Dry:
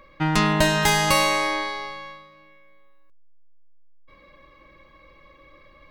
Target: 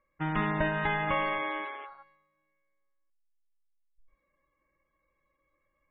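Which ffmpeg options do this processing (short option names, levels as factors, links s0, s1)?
-af "highshelf=f=2800:t=q:w=1.5:g=-9,afwtdn=0.0398,volume=0.355" -ar 22050 -c:a libmp3lame -b:a 16k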